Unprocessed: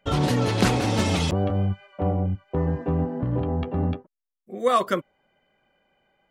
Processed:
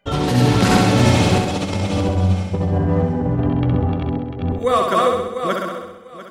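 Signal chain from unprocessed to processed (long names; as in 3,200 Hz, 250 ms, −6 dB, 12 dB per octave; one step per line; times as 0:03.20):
feedback delay that plays each chunk backwards 348 ms, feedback 41%, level 0 dB
0:01.38–0:03.80: compressor whose output falls as the input rises −22 dBFS, ratio −0.5
flutter between parallel walls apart 11.2 metres, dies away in 0.92 s
level +2 dB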